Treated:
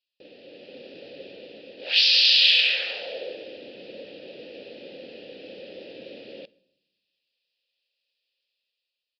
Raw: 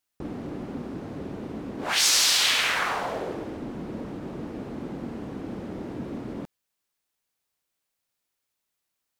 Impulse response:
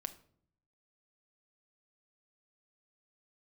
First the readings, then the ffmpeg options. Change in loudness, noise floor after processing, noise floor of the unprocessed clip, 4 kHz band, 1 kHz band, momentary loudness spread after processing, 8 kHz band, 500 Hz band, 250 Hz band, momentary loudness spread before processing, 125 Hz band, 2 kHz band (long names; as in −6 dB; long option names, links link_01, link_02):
+9.5 dB, −85 dBFS, −82 dBFS, +5.5 dB, −18.5 dB, 21 LU, below −15 dB, −2.0 dB, −14.5 dB, 18 LU, below −20 dB, +2.0 dB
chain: -filter_complex "[0:a]asplit=2[link_01][link_02];[1:a]atrim=start_sample=2205,asetrate=24696,aresample=44100[link_03];[link_02][link_03]afir=irnorm=-1:irlink=0,volume=-9.5dB[link_04];[link_01][link_04]amix=inputs=2:normalize=0,aresample=11025,aresample=44100,asplit=3[link_05][link_06][link_07];[link_05]bandpass=frequency=530:width_type=q:width=8,volume=0dB[link_08];[link_06]bandpass=frequency=1840:width_type=q:width=8,volume=-6dB[link_09];[link_07]bandpass=frequency=2480:width_type=q:width=8,volume=-9dB[link_10];[link_08][link_09][link_10]amix=inputs=3:normalize=0,aexciter=amount=14.5:drive=6.3:freq=2800,dynaudnorm=framelen=150:gausssize=9:maxgain=7dB,volume=-3.5dB"